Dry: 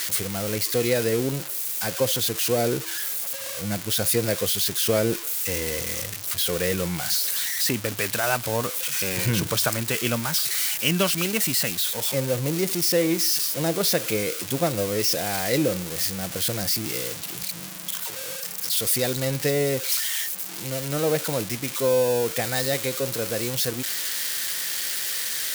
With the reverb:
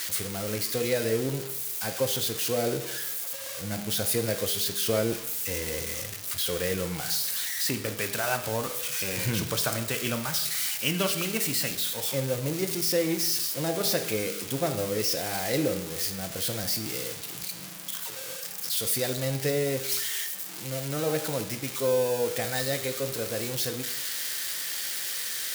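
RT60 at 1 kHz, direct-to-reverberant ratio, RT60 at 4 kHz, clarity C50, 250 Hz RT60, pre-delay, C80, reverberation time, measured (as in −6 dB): 0.85 s, 6.5 dB, 0.80 s, 10.0 dB, 0.85 s, 5 ms, 12.5 dB, 0.90 s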